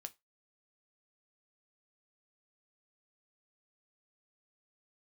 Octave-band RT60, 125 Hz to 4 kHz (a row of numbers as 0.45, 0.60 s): 0.20, 0.15, 0.20, 0.20, 0.20, 0.20 s